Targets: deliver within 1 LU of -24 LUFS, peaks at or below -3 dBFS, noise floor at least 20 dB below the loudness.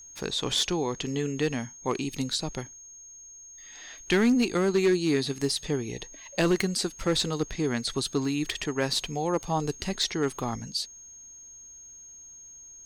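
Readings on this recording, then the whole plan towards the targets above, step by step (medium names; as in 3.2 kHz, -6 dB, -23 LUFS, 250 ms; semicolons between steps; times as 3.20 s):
clipped samples 0.4%; clipping level -17.0 dBFS; steady tone 6.5 kHz; tone level -45 dBFS; loudness -28.0 LUFS; peak level -17.0 dBFS; loudness target -24.0 LUFS
-> clip repair -17 dBFS; band-stop 6.5 kHz, Q 30; trim +4 dB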